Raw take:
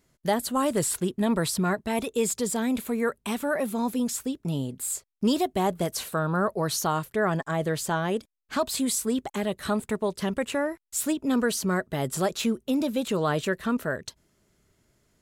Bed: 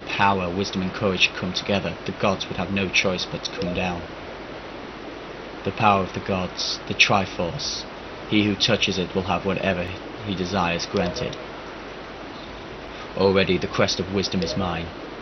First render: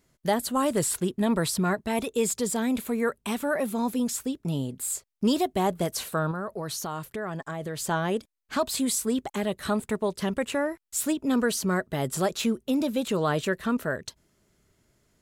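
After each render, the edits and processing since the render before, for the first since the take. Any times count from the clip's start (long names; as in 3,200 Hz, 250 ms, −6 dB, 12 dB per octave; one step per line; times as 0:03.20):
0:06.31–0:07.80: downward compressor 3 to 1, threshold −31 dBFS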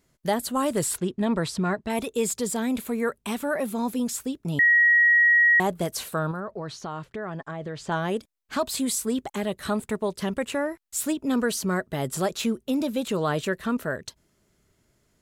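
0:00.98–0:01.90: high-frequency loss of the air 67 metres
0:04.59–0:05.60: beep over 1,900 Hz −14.5 dBFS
0:06.40–0:07.92: high-frequency loss of the air 130 metres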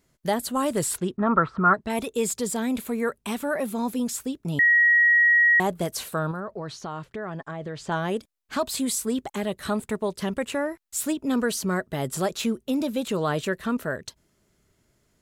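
0:01.17–0:01.74: low-pass with resonance 1,300 Hz, resonance Q 11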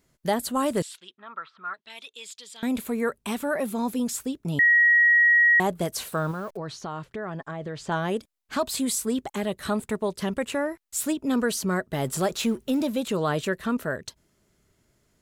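0:00.82–0:02.63: resonant band-pass 3,400 Hz, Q 2.4
0:05.95–0:06.57: hold until the input has moved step −48 dBFS
0:11.93–0:12.96: mu-law and A-law mismatch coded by mu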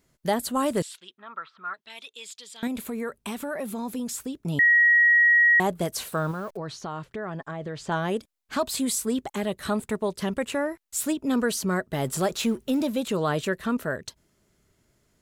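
0:02.67–0:04.37: downward compressor 2.5 to 1, threshold −29 dBFS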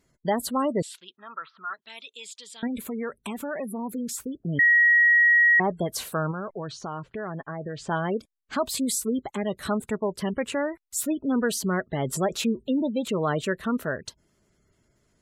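gate on every frequency bin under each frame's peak −25 dB strong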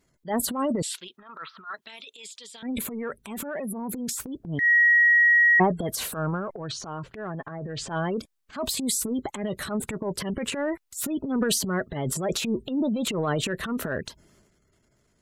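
transient designer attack −11 dB, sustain +9 dB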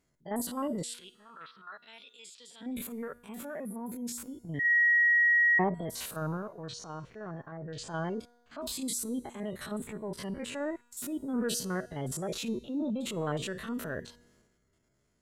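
spectrum averaged block by block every 50 ms
tuned comb filter 240 Hz, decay 1.3 s, mix 50%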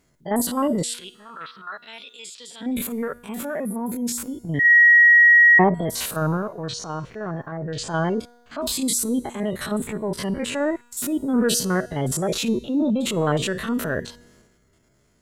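level +11.5 dB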